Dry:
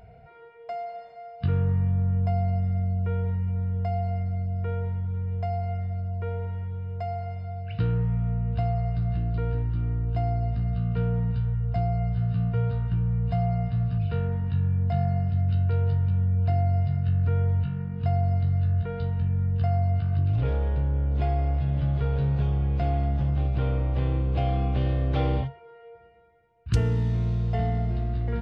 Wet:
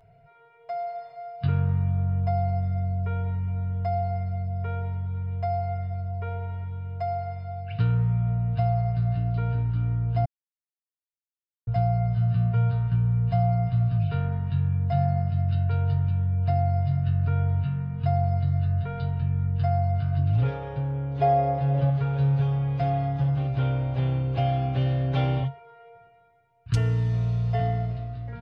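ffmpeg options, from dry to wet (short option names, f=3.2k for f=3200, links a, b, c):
-filter_complex "[0:a]asettb=1/sr,asplit=3[a][b][c];[a]atrim=end=21.214[d];[b]atrim=start=21.21:end=21.9,asetpts=PTS-STARTPTS,afade=t=in:d=0.004:c=qsin,afade=t=out:st=0.686:d=0.004:c=qsin,equalizer=f=540:w=1.1:g=12[e];[c]atrim=start=21.896[f];[d][e]acrossfade=d=0.004:c1=hsin:c2=qsin[g];[g][f]acrossfade=d=0.004:c1=qsin:c2=hsin,asplit=3[h][i][j];[h]atrim=end=10.25,asetpts=PTS-STARTPTS,afade=t=out:st=10.246:d=0.004:c=hsin[k];[i]atrim=start=10.25:end=11.67,asetpts=PTS-STARTPTS,volume=0[l];[j]atrim=start=11.67,asetpts=PTS-STARTPTS,afade=t=in:d=0.004:c=hsin[m];[k][l][m]concat=n=3:v=0:a=1,equalizer=f=300:w=1.7:g=-5,aecho=1:1:7.3:0.89,dynaudnorm=f=120:g=11:m=8dB,volume=-8.5dB"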